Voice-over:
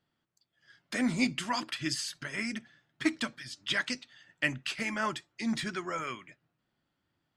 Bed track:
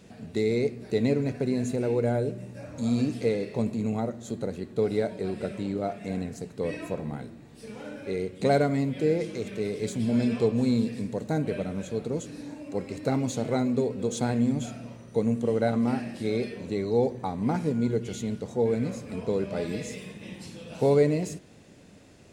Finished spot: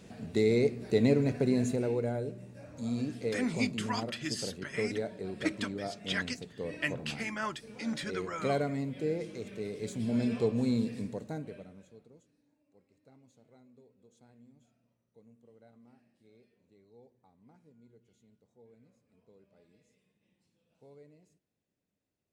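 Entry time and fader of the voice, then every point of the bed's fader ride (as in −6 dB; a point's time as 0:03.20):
2.40 s, −3.5 dB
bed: 0:01.61 −0.5 dB
0:02.13 −8 dB
0:09.71 −8 dB
0:10.24 −5 dB
0:11.05 −5 dB
0:12.42 −34.5 dB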